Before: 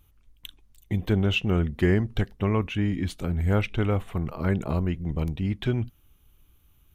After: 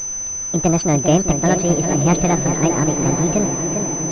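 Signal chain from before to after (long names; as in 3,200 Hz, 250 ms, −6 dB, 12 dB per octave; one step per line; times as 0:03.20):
change of speed 1.69×
tape delay 400 ms, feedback 70%, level −5 dB, low-pass 1,800 Hz
background noise pink −49 dBFS
on a send: feedback delay with all-pass diffusion 958 ms, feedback 55%, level −10 dB
on the sum: switching amplifier with a slow clock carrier 6,100 Hz
level +7 dB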